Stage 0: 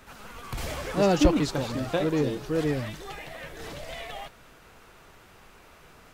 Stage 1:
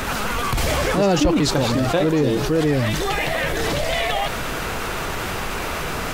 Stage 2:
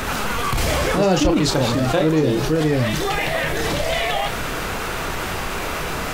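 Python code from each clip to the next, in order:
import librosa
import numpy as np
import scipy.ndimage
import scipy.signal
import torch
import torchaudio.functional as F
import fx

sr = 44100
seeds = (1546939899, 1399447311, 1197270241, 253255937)

y1 = fx.env_flatten(x, sr, amount_pct=70)
y2 = fx.doubler(y1, sr, ms=32.0, db=-8)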